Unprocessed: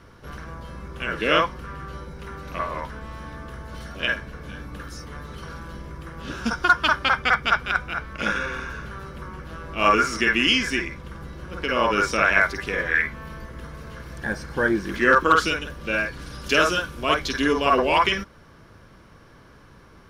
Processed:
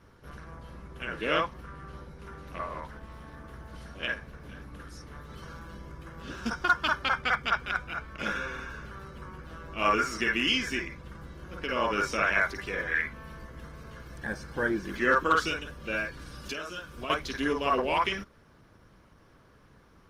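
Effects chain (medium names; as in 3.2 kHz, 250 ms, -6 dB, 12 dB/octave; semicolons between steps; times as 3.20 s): 16.44–17.10 s: compression 8:1, threshold -27 dBFS, peak gain reduction 13.5 dB; trim -7 dB; Opus 20 kbps 48 kHz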